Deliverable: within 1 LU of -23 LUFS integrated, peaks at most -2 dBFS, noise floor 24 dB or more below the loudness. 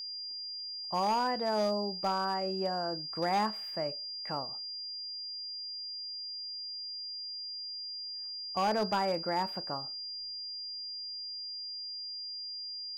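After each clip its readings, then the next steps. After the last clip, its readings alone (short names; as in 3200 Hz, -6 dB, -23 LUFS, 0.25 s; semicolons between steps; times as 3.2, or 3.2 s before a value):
clipped 0.5%; flat tops at -24.0 dBFS; steady tone 4800 Hz; tone level -38 dBFS; loudness -34.5 LUFS; peak -24.0 dBFS; loudness target -23.0 LUFS
-> clip repair -24 dBFS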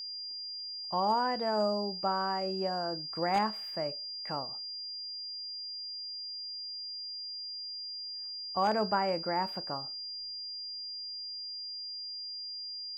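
clipped 0.0%; steady tone 4800 Hz; tone level -38 dBFS
-> notch 4800 Hz, Q 30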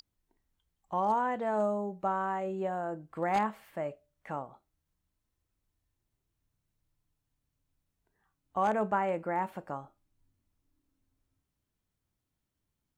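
steady tone none; loudness -33.0 LUFS; peak -15.5 dBFS; loudness target -23.0 LUFS
-> gain +10 dB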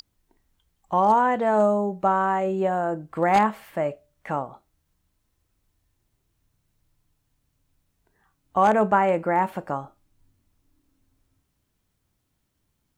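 loudness -23.0 LUFS; peak -5.5 dBFS; noise floor -74 dBFS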